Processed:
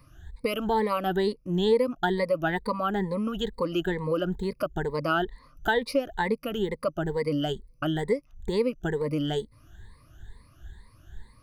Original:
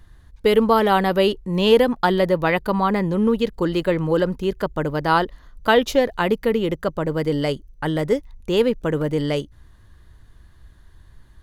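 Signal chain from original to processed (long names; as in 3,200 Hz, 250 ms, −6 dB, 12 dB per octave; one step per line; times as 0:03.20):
rippled gain that drifts along the octave scale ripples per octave 0.94, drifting +2.2 Hz, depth 22 dB
downward compressor 2 to 1, threshold −26 dBFS, peak gain reduction 14 dB
level −4 dB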